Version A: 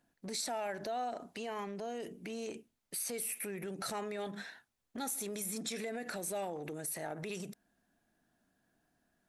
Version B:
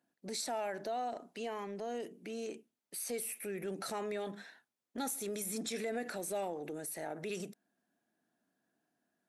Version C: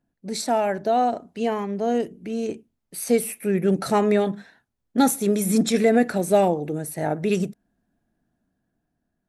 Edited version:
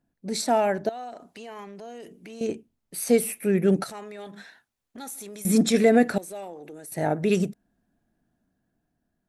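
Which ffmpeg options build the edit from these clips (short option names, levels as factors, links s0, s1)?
-filter_complex "[0:a]asplit=2[s0][s1];[2:a]asplit=4[s2][s3][s4][s5];[s2]atrim=end=0.892[s6];[s0]atrim=start=0.888:end=2.412[s7];[s3]atrim=start=2.408:end=3.842[s8];[s1]atrim=start=3.838:end=5.452[s9];[s4]atrim=start=5.448:end=6.182[s10];[1:a]atrim=start=6.178:end=6.922[s11];[s5]atrim=start=6.918[s12];[s6][s7]acrossfade=d=0.004:c1=hsin:c2=hsin[s13];[s13][s8]acrossfade=d=0.004:c1=hsin:c2=hsin[s14];[s14][s9]acrossfade=d=0.004:c1=hsin:c2=hsin[s15];[s15][s10]acrossfade=d=0.004:c1=hsin:c2=hsin[s16];[s16][s11]acrossfade=d=0.004:c1=hsin:c2=hsin[s17];[s17][s12]acrossfade=d=0.004:c1=hsin:c2=hsin"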